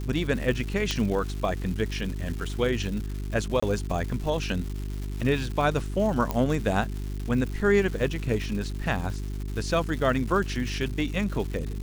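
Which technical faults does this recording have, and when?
crackle 370/s -34 dBFS
hum 50 Hz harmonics 8 -32 dBFS
0.91 pop -11 dBFS
3.6–3.62 gap 25 ms
6.31 pop -13 dBFS

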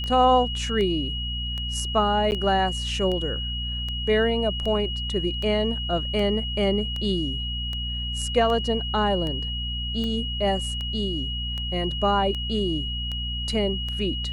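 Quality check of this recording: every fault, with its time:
hum 60 Hz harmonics 4 -31 dBFS
tick 78 rpm -19 dBFS
tone 2900 Hz -30 dBFS
2.31–2.32 gap 9.8 ms

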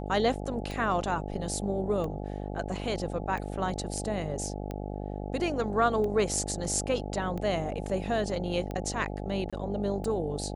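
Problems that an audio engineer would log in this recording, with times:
buzz 50 Hz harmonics 17 -36 dBFS
tick 45 rpm
9.5–9.53 gap 26 ms

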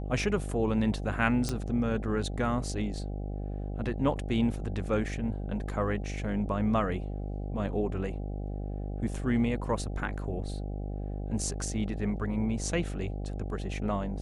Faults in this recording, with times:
buzz 50 Hz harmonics 16 -35 dBFS
1.49 pop -17 dBFS

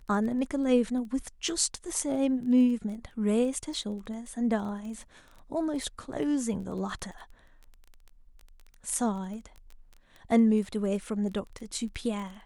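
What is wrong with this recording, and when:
crackle 14/s -38 dBFS

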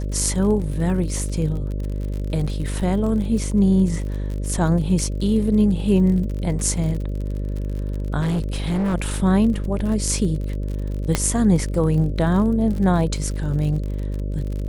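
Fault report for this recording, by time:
buzz 50 Hz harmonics 12 -25 dBFS
crackle 47/s -29 dBFS
8.2–8.95 clipped -18.5 dBFS
11.15 pop -4 dBFS

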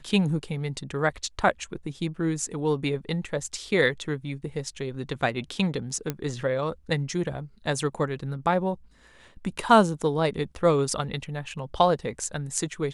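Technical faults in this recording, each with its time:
6.1 pop -13 dBFS

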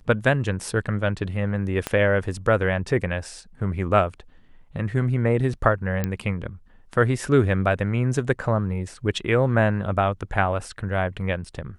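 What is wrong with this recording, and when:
1.87 pop -10 dBFS
6.04 pop -11 dBFS

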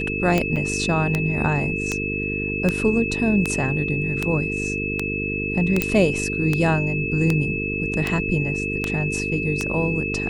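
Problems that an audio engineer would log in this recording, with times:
buzz 50 Hz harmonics 9 -28 dBFS
tick 78 rpm -7 dBFS
tone 2600 Hz -26 dBFS
0.56–0.57 gap 5.7 ms
5.82 pop -5 dBFS

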